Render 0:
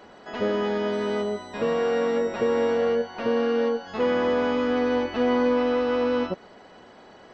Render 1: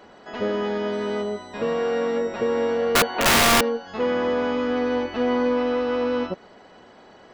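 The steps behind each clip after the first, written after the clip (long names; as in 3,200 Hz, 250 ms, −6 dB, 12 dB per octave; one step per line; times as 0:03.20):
gain on a spectral selection 0:02.96–0:03.61, 230–4,600 Hz +10 dB
wrap-around overflow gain 12 dB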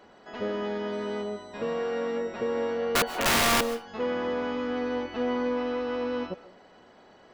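convolution reverb RT60 0.35 s, pre-delay 100 ms, DRR 15.5 dB
level −6 dB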